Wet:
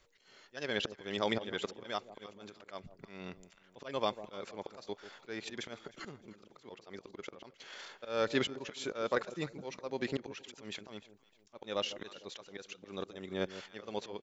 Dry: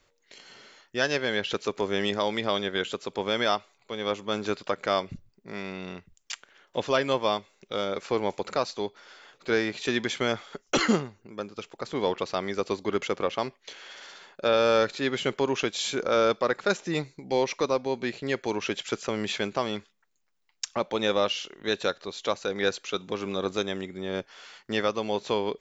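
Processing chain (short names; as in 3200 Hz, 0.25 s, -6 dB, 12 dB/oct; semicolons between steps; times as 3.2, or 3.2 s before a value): auto swell 0.665 s; echo with dull and thin repeats by turns 0.274 s, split 820 Hz, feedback 56%, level -13 dB; tempo 1.8×; gain -1 dB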